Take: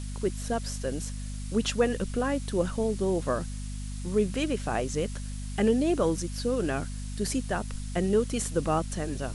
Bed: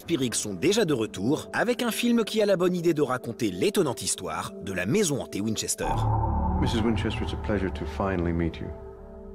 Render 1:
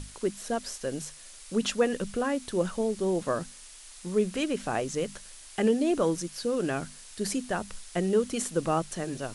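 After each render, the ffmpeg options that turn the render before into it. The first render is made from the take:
-af "bandreject=f=50:t=h:w=6,bandreject=f=100:t=h:w=6,bandreject=f=150:t=h:w=6,bandreject=f=200:t=h:w=6,bandreject=f=250:t=h:w=6"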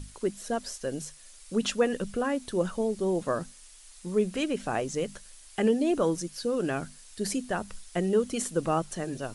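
-af "afftdn=nr=6:nf=-49"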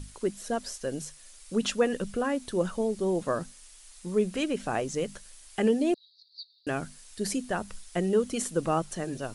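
-filter_complex "[0:a]asettb=1/sr,asplit=3[a][b][c];[a]atrim=end=5.944[d];[b]atrim=start=5.94:end=6.67,asetpts=PTS-STARTPTS,afade=t=in:d=0.004:c=qsin,afade=t=out:st=0.726:d=0.004:c=qsin,asuperpass=centerf=4200:order=8:qfactor=4.3[e];[c]atrim=start=6.666[f];[d][e]acrossfade=d=0.004:c1=hsin:c2=qsin[g];[g][f]acrossfade=d=0.004:c1=qsin:c2=hsin"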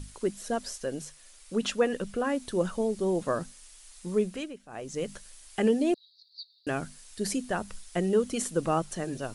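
-filter_complex "[0:a]asettb=1/sr,asplit=3[a][b][c];[a]atrim=end=0.844[d];[b]atrim=start=0.84:end=2.27,asetpts=PTS-STARTPTS,afade=t=in:d=0.004:c=qsin,afade=t=out:st=1.426:d=0.004:c=qsin,bass=f=250:g=-3,treble=f=4k:g=-3[e];[c]atrim=start=2.266[f];[d][e]acrossfade=d=0.004:c1=hsin:c2=qsin[g];[g][f]acrossfade=d=0.004:c1=qsin:c2=hsin,asplit=3[h][i][j];[h]atrim=end=4.59,asetpts=PTS-STARTPTS,afade=t=out:st=4.15:d=0.44:silence=0.112202[k];[i]atrim=start=4.59:end=4.68,asetpts=PTS-STARTPTS,volume=-19dB[l];[j]atrim=start=4.68,asetpts=PTS-STARTPTS,afade=t=in:d=0.44:silence=0.112202[m];[k][l][m]concat=n=3:v=0:a=1"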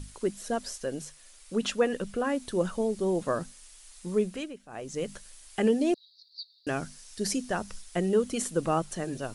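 -filter_complex "[0:a]asettb=1/sr,asplit=3[a][b][c];[a]atrim=end=5.814[d];[b]atrim=start=5.81:end=7.82,asetpts=PTS-STARTPTS,afade=t=in:d=0.004:c=qsin,afade=t=out:st=2.006:d=0.004:c=qsin,equalizer=f=5.6k:w=2.8:g=5.5[e];[c]atrim=start=7.816[f];[d][e]acrossfade=d=0.004:c1=hsin:c2=qsin[g];[g][f]acrossfade=d=0.004:c1=qsin:c2=hsin"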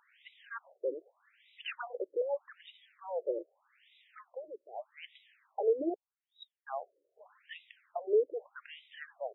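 -af "asoftclip=type=tanh:threshold=-16.5dB,afftfilt=real='re*between(b*sr/1024,420*pow(2800/420,0.5+0.5*sin(2*PI*0.82*pts/sr))/1.41,420*pow(2800/420,0.5+0.5*sin(2*PI*0.82*pts/sr))*1.41)':imag='im*between(b*sr/1024,420*pow(2800/420,0.5+0.5*sin(2*PI*0.82*pts/sr))/1.41,420*pow(2800/420,0.5+0.5*sin(2*PI*0.82*pts/sr))*1.41)':win_size=1024:overlap=0.75"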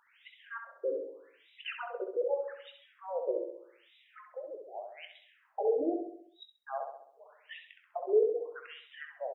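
-filter_complex "[0:a]asplit=2[a][b];[b]adelay=21,volume=-10.5dB[c];[a][c]amix=inputs=2:normalize=0,asplit=2[d][e];[e]adelay=66,lowpass=f=2k:p=1,volume=-4dB,asplit=2[f][g];[g]adelay=66,lowpass=f=2k:p=1,volume=0.54,asplit=2[h][i];[i]adelay=66,lowpass=f=2k:p=1,volume=0.54,asplit=2[j][k];[k]adelay=66,lowpass=f=2k:p=1,volume=0.54,asplit=2[l][m];[m]adelay=66,lowpass=f=2k:p=1,volume=0.54,asplit=2[n][o];[o]adelay=66,lowpass=f=2k:p=1,volume=0.54,asplit=2[p][q];[q]adelay=66,lowpass=f=2k:p=1,volume=0.54[r];[d][f][h][j][l][n][p][r]amix=inputs=8:normalize=0"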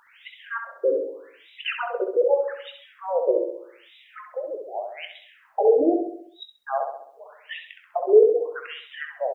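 -af "volume=11.5dB"

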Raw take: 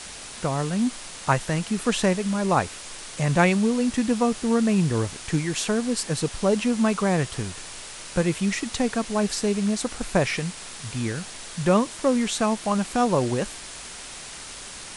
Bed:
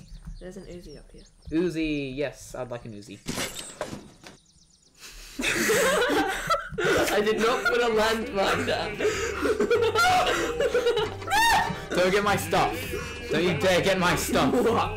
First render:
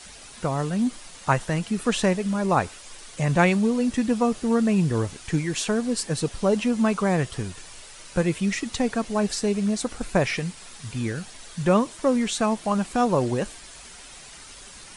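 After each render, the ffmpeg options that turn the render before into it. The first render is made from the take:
-af "afftdn=nr=8:nf=-39"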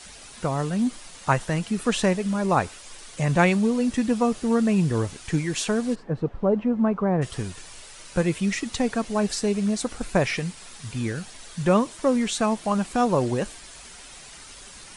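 -filter_complex "[0:a]asplit=3[a][b][c];[a]afade=t=out:st=5.94:d=0.02[d];[b]lowpass=1.1k,afade=t=in:st=5.94:d=0.02,afade=t=out:st=7.21:d=0.02[e];[c]afade=t=in:st=7.21:d=0.02[f];[d][e][f]amix=inputs=3:normalize=0"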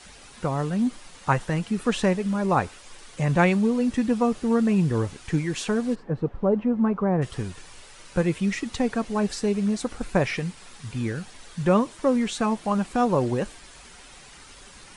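-af "highshelf=f=3.8k:g=-7,bandreject=f=650:w=14"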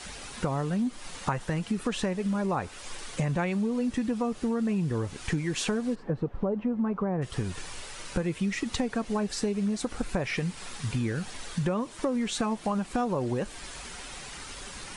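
-filter_complex "[0:a]asplit=2[a][b];[b]alimiter=limit=-16dB:level=0:latency=1:release=35,volume=-1dB[c];[a][c]amix=inputs=2:normalize=0,acompressor=threshold=-26dB:ratio=6"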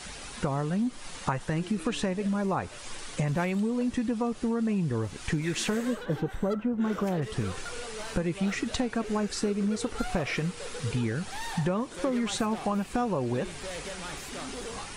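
-filter_complex "[1:a]volume=-18dB[a];[0:a][a]amix=inputs=2:normalize=0"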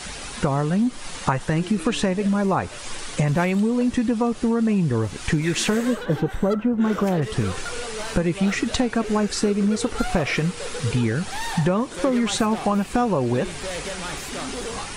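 -af "volume=7.5dB"

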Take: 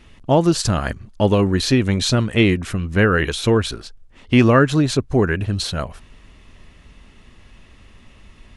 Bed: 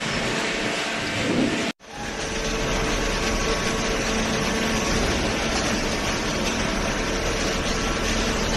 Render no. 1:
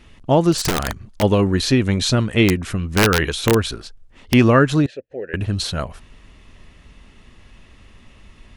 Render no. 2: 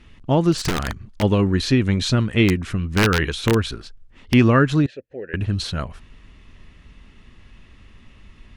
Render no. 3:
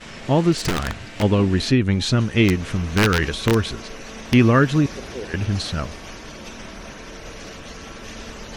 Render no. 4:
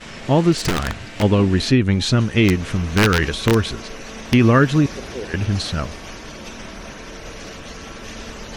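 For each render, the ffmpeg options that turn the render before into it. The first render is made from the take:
-filter_complex "[0:a]asplit=3[a][b][c];[a]afade=t=out:st=0.52:d=0.02[d];[b]aeval=exprs='(mod(4.47*val(0)+1,2)-1)/4.47':c=same,afade=t=in:st=0.52:d=0.02,afade=t=out:st=1.21:d=0.02[e];[c]afade=t=in:st=1.21:d=0.02[f];[d][e][f]amix=inputs=3:normalize=0,asettb=1/sr,asplit=3[g][h][i];[g]atrim=end=2.484[j];[h]atrim=start=2.48:end=4.34,asetpts=PTS-STARTPTS,afade=t=in:d=0.004:c=qsin,afade=t=out:st=1.856:d=0.004:c=qsin,aeval=exprs='(mod(2.24*val(0)+1,2)-1)/2.24':c=same[k];[i]atrim=start=4.336[l];[j][k]acrossfade=d=0.004:c1=hsin:c2=qsin[m];[m][l]acrossfade=d=0.004:c1=qsin:c2=hsin,asettb=1/sr,asplit=3[n][o][p];[n]atrim=end=4.864[q];[o]atrim=start=4.86:end=5.34,asetpts=PTS-STARTPTS,afade=t=in:d=0.004:c=qsin,afade=t=out:st=0.476:d=0.004:c=qsin,asplit=3[r][s][t];[r]bandpass=f=530:t=q:w=8,volume=0dB[u];[s]bandpass=f=1.84k:t=q:w=8,volume=-6dB[v];[t]bandpass=f=2.48k:t=q:w=8,volume=-9dB[w];[u][v][w]amix=inputs=3:normalize=0[x];[p]atrim=start=5.336[y];[q][x]acrossfade=d=0.004:c1=hsin:c2=qsin[z];[z][y]acrossfade=d=0.004:c1=qsin:c2=hsin"
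-af "lowpass=f=3.8k:p=1,equalizer=f=640:w=1:g=-5.5"
-filter_complex "[1:a]volume=-13dB[a];[0:a][a]amix=inputs=2:normalize=0"
-af "volume=2dB,alimiter=limit=-3dB:level=0:latency=1"

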